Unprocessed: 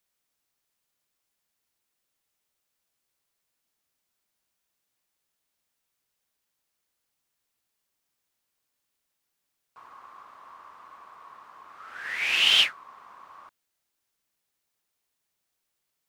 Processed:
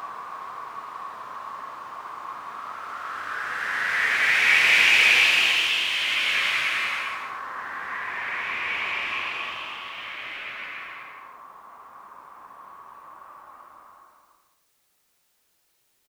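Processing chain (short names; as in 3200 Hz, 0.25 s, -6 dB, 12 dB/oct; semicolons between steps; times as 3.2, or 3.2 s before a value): negative-ratio compressor -26 dBFS, ratio -0.5; outdoor echo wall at 170 m, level -6 dB; Paulstretch 4×, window 0.50 s, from 11.04; gain +7.5 dB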